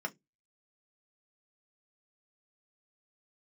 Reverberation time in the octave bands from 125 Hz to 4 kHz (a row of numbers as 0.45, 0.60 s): 0.30, 0.25, 0.20, 0.10, 0.15, 0.15 s